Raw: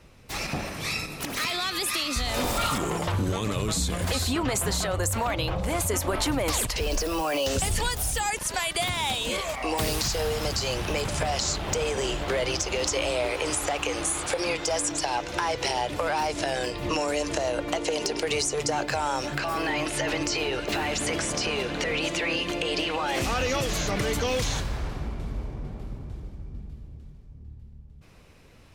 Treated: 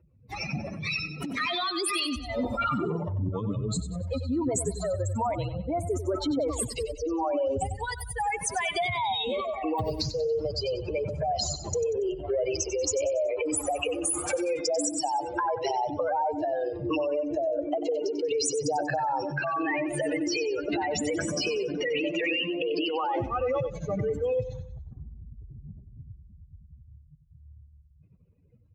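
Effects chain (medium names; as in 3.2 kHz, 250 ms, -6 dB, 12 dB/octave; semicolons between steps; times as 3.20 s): spectral contrast enhancement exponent 3; high-pass 110 Hz 12 dB/octave; feedback delay 94 ms, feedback 41%, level -12 dB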